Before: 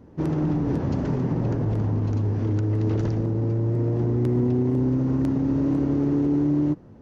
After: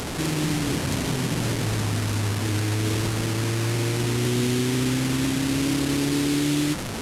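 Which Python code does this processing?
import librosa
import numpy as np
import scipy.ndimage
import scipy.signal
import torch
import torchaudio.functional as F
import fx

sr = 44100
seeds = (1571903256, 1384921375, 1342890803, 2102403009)

y = fx.delta_mod(x, sr, bps=64000, step_db=-23.5)
y = fx.high_shelf(y, sr, hz=2400.0, db=8.5)
y = y * librosa.db_to_amplitude(-2.0)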